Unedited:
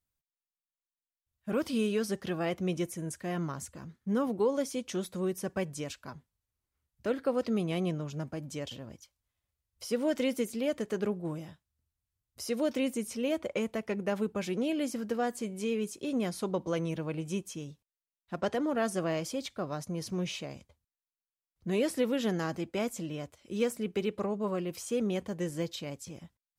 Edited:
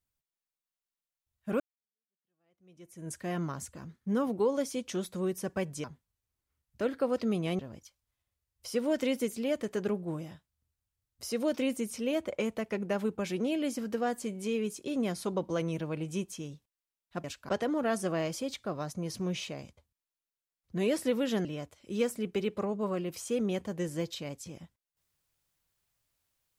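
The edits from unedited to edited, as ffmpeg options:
-filter_complex "[0:a]asplit=7[a][b][c][d][e][f][g];[a]atrim=end=1.6,asetpts=PTS-STARTPTS,afade=t=out:st=1.596:d=0.004:c=hsin[h];[b]atrim=start=1.6:end=5.842,asetpts=PTS-STARTPTS,afade=t=in:d=1.52:c=exp[i];[c]atrim=start=6.088:end=7.842[j];[d]atrim=start=8.758:end=18.412[k];[e]atrim=start=5.838:end=6.092[l];[f]atrim=start=18.408:end=22.372[m];[g]atrim=start=23.058[n];[h][i]concat=n=2:v=0:a=1[o];[o][j]acrossfade=d=0.004:c1=hsin:c2=hsin[p];[p][k]acrossfade=d=0.004:c1=hsin:c2=hsin[q];[q][l]acrossfade=d=0.004:c1=hsin:c2=hsin[r];[r][m]acrossfade=d=0.004:c1=hsin:c2=hsin[s];[s][n]acrossfade=d=0.004:c1=hsin:c2=hsin"

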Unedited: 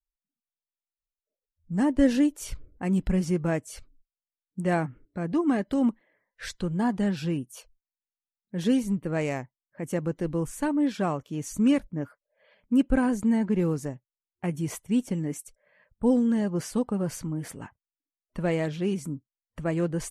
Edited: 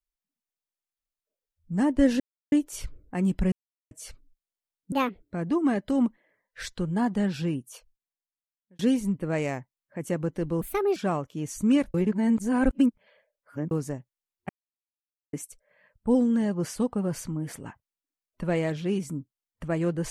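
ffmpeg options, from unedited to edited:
-filter_complex "[0:a]asplit=13[a][b][c][d][e][f][g][h][i][j][k][l][m];[a]atrim=end=2.2,asetpts=PTS-STARTPTS,afade=t=out:st=2.196:d=0.004:c=hsin,apad=pad_dur=0.32[n];[b]atrim=start=2.2:end=3.2,asetpts=PTS-STARTPTS,afade=t=in:d=0.004:c=hsin,afade=t=out:st=0.996:d=0.004:c=hsin[o];[c]atrim=start=3.2:end=3.59,asetpts=PTS-STARTPTS,volume=0[p];[d]atrim=start=3.59:end=4.604,asetpts=PTS-STARTPTS,afade=t=in:d=0.004:c=hsin[q];[e]atrim=start=4.6:end=5.03,asetpts=PTS-STARTPTS,asetrate=67473,aresample=44100,atrim=end_sample=12394,asetpts=PTS-STARTPTS[r];[f]atrim=start=5.026:end=8.62,asetpts=PTS-STARTPTS,afade=t=out:st=2.454:d=1.14[s];[g]atrim=start=8.62:end=10.444,asetpts=PTS-STARTPTS,afade=t=in:d=0.004:c=hsin[t];[h]atrim=start=10.44:end=10.92,asetpts=PTS-STARTPTS,asetrate=60417,aresample=44100,atrim=end_sample=15451,asetpts=PTS-STARTPTS[u];[i]atrim=start=10.916:end=11.902[v];[j]atrim=start=11.898:end=13.672,asetpts=PTS-STARTPTS,areverse[w];[k]atrim=start=13.668:end=14.45,asetpts=PTS-STARTPTS,afade=t=out:st=0.778:d=0.004:c=hsin[x];[l]atrim=start=14.45:end=15.29,asetpts=PTS-STARTPTS,volume=0[y];[m]atrim=start=15.29,asetpts=PTS-STARTPTS,afade=t=in:d=0.004:c=hsin[z];[n][o][p][q]concat=n=4:v=0:a=1[aa];[aa][r]acrossfade=d=0.004:c1=hsin:c2=hsin[ab];[s][t]concat=n=2:v=0:a=1[ac];[ab][ac]acrossfade=d=0.004:c1=hsin:c2=hsin[ad];[ad][u]acrossfade=d=0.004:c1=hsin:c2=hsin[ae];[ae][v]acrossfade=d=0.004:c1=hsin:c2=hsin[af];[af][w]acrossfade=d=0.004:c1=hsin:c2=hsin[ag];[x][y][z]concat=n=3:v=0:a=1[ah];[ag][ah]acrossfade=d=0.004:c1=hsin:c2=hsin"

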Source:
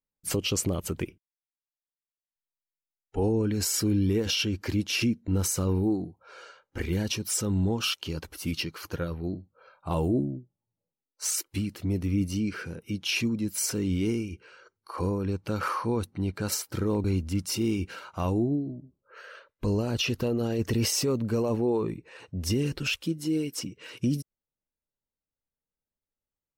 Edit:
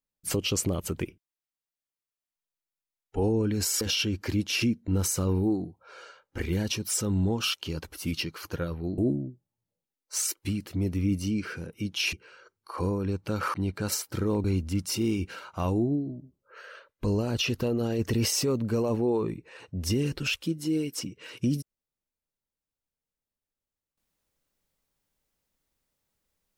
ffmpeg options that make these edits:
-filter_complex "[0:a]asplit=5[a][b][c][d][e];[a]atrim=end=3.812[f];[b]atrim=start=4.208:end=9.382[g];[c]atrim=start=10.068:end=13.222[h];[d]atrim=start=14.328:end=15.742[i];[e]atrim=start=16.138[j];[f][g]acrossfade=d=0.004:c1=hsin:c2=hsin[k];[k][h]acrossfade=d=0.004:c1=hsin:c2=hsin[l];[l][i]acrossfade=d=0.004:c1=hsin:c2=hsin[m];[m][j]acrossfade=d=0.004:c1=hsin:c2=hsin"

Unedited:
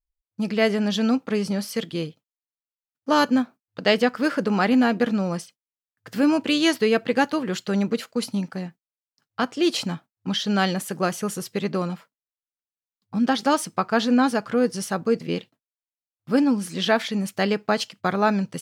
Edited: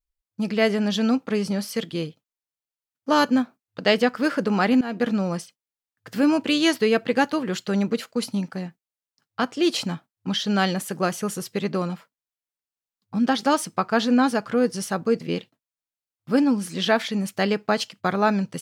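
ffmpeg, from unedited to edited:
-filter_complex "[0:a]asplit=2[a][b];[a]atrim=end=4.81,asetpts=PTS-STARTPTS,afade=t=out:st=4.806:d=0.004:c=hsin:silence=0.11885[c];[b]atrim=start=4.81,asetpts=PTS-STARTPTS,afade=t=in:d=0.27:silence=0.11885[d];[c][d]concat=n=2:v=0:a=1"

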